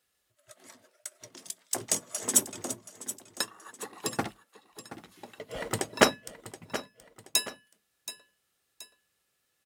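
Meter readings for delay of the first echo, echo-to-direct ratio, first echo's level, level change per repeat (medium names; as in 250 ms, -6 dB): 726 ms, -13.5 dB, -14.0 dB, -7.5 dB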